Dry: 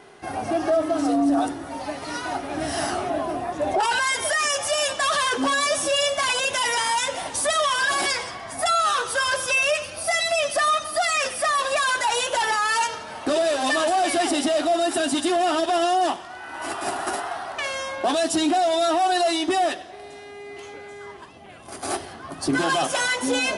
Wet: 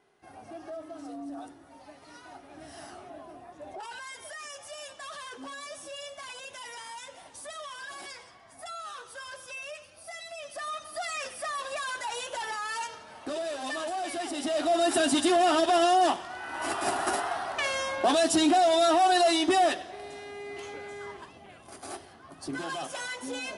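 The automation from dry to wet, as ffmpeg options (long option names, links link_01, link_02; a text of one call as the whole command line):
ffmpeg -i in.wav -af "volume=-1.5dB,afade=type=in:start_time=10.38:duration=0.67:silence=0.421697,afade=type=in:start_time=14.34:duration=0.59:silence=0.298538,afade=type=out:start_time=21.03:duration=0.87:silence=0.266073" out.wav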